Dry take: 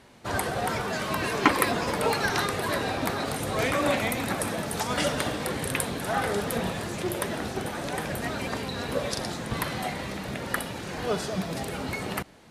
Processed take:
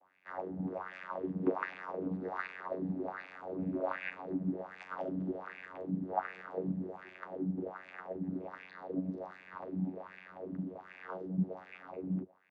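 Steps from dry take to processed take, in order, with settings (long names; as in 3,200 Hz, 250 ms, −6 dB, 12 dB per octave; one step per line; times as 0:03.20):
LFO wah 1.3 Hz 210–2,200 Hz, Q 7.3
channel vocoder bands 16, saw 92.8 Hz
level +3.5 dB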